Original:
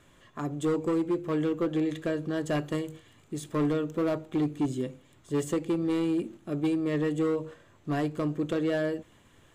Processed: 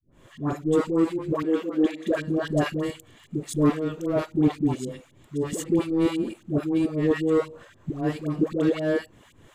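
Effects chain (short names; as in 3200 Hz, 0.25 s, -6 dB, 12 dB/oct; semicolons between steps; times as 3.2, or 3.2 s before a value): 1.42–2.15 steep high-pass 180 Hz 72 dB/oct; tremolo saw up 3.8 Hz, depth 100%; dispersion highs, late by 0.114 s, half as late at 680 Hz; gain +9 dB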